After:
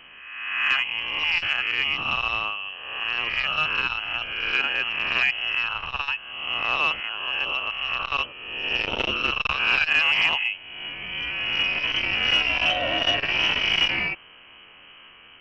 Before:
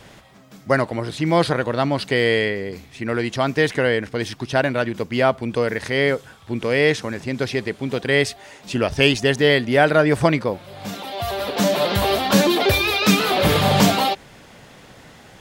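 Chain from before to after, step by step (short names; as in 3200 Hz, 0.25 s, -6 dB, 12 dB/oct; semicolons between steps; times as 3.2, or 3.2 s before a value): spectral swells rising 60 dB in 1.23 s; in parallel at -11 dB: wrapped overs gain 4 dB; on the sum: inverted band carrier 3100 Hz; core saturation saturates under 1100 Hz; gain -8.5 dB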